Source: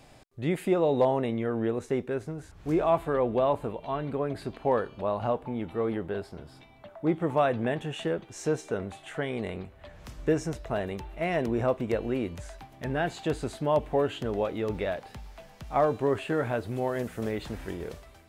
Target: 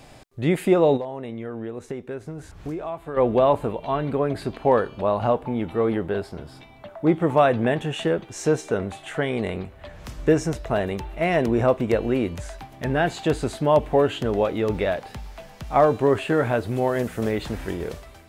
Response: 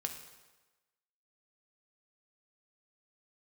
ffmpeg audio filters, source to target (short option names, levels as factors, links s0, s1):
-filter_complex "[0:a]asplit=3[s0][s1][s2];[s0]afade=t=out:st=0.96:d=0.02[s3];[s1]acompressor=threshold=0.0141:ratio=5,afade=t=in:st=0.96:d=0.02,afade=t=out:st=3.16:d=0.02[s4];[s2]afade=t=in:st=3.16:d=0.02[s5];[s3][s4][s5]amix=inputs=3:normalize=0,volume=2.24"